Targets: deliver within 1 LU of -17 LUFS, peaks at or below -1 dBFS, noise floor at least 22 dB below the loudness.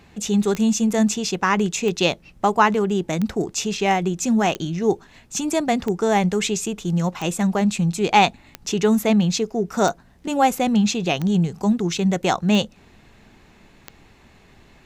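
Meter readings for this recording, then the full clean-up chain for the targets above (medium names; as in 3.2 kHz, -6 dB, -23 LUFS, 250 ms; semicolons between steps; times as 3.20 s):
clicks found 11; loudness -21.0 LUFS; peak level -2.5 dBFS; loudness target -17.0 LUFS
-> de-click; trim +4 dB; peak limiter -1 dBFS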